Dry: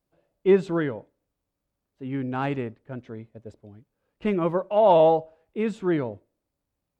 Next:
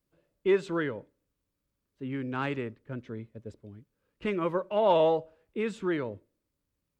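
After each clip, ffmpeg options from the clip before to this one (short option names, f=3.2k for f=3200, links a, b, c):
-filter_complex "[0:a]equalizer=f=740:t=o:w=0.52:g=-11,acrossover=split=410[a][b];[a]acompressor=threshold=-34dB:ratio=6[c];[c][b]amix=inputs=2:normalize=0"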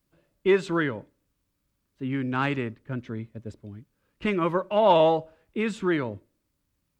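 -af "equalizer=f=470:w=2.4:g=-6,volume=6.5dB"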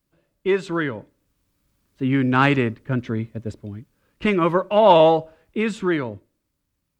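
-af "dynaudnorm=f=200:g=13:m=11.5dB"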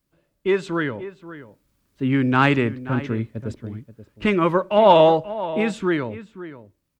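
-filter_complex "[0:a]asplit=2[a][b];[b]adelay=530.6,volume=-14dB,highshelf=f=4k:g=-11.9[c];[a][c]amix=inputs=2:normalize=0"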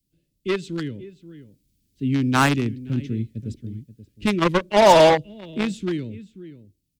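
-filter_complex "[0:a]acrossover=split=170|360|2700[a][b][c][d];[c]acrusher=bits=2:mix=0:aa=0.5[e];[d]asoftclip=type=tanh:threshold=-30.5dB[f];[a][b][e][f]amix=inputs=4:normalize=0"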